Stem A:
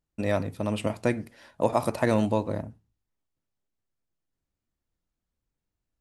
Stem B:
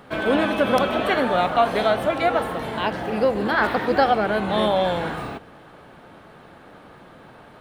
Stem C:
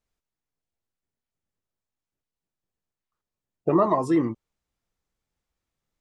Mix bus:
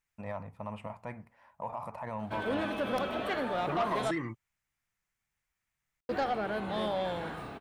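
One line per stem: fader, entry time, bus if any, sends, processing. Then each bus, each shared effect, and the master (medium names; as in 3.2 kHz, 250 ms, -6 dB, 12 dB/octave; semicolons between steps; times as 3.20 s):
-11.5 dB, 0.00 s, no send, FFT filter 200 Hz 0 dB, 320 Hz -12 dB, 980 Hz +12 dB, 1.5 kHz 0 dB, 2.3 kHz +1 dB, 3.8 kHz -13 dB; peak limiter -15 dBFS, peak gain reduction 11.5 dB
-11.0 dB, 2.20 s, muted 4.11–6.09 s, no send, none
+2.0 dB, 0.00 s, no send, ten-band graphic EQ 125 Hz +5 dB, 250 Hz -6 dB, 500 Hz -10 dB, 1 kHz -4 dB, 2 kHz +7 dB, 4 kHz -7 dB; compression, threshold -26 dBFS, peak gain reduction 5.5 dB; bass shelf 280 Hz -11.5 dB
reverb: none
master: saturation -23.5 dBFS, distortion -17 dB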